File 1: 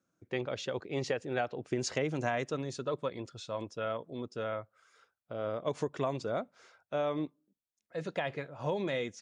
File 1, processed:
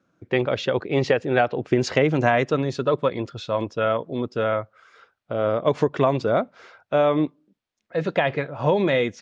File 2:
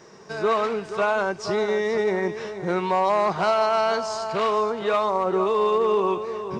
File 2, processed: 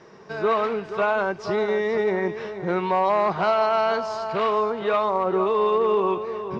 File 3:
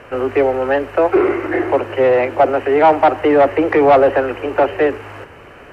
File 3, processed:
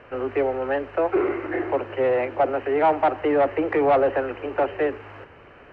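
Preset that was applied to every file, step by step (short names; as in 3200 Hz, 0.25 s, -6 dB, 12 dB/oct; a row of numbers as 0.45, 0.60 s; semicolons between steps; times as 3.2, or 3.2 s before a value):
LPF 3700 Hz 12 dB/oct; match loudness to -23 LUFS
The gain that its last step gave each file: +13.0, 0.0, -8.5 dB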